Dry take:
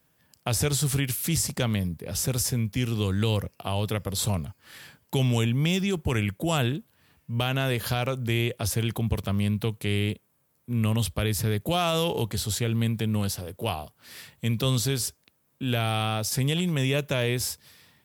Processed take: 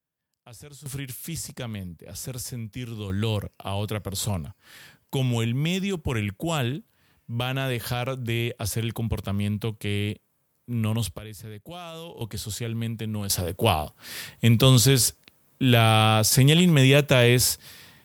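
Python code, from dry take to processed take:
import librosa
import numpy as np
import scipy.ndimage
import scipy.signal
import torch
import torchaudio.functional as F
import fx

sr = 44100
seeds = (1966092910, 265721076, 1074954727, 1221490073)

y = fx.gain(x, sr, db=fx.steps((0.0, -20.0), (0.86, -7.5), (3.1, -1.0), (11.18, -14.0), (12.21, -4.0), (13.3, 8.0)))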